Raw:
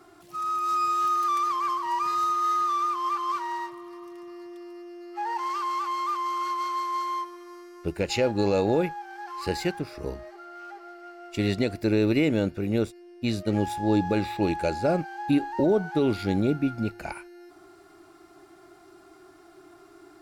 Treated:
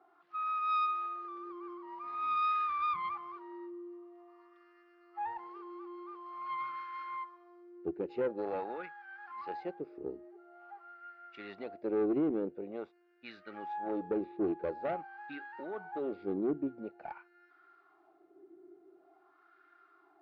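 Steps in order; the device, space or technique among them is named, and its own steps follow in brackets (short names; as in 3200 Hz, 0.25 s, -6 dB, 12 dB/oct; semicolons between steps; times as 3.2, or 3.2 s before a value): wah-wah guitar rig (wah 0.47 Hz 360–1500 Hz, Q 3; tube stage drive 24 dB, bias 0.4; speaker cabinet 78–4500 Hz, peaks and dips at 110 Hz -9 dB, 620 Hz -5 dB, 1000 Hz -6 dB)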